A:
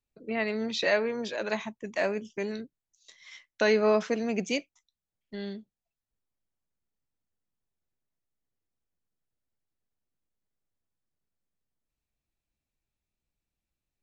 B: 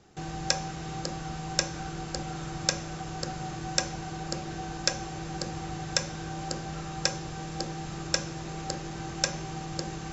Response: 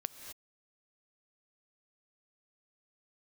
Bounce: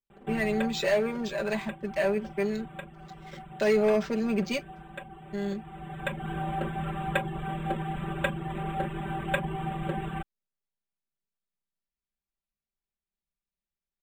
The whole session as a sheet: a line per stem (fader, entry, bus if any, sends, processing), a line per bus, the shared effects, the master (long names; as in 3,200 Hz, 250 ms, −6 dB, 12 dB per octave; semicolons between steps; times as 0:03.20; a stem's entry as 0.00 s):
−8.0 dB, 0.00 s, no send, leveller curve on the samples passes 2
+2.5 dB, 0.10 s, no send, Butterworth low-pass 3,500 Hz 96 dB per octave; reverb reduction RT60 0.55 s; automatic ducking −13 dB, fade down 1.10 s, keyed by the first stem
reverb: not used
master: comb filter 5.1 ms, depth 88%; linearly interpolated sample-rate reduction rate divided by 4×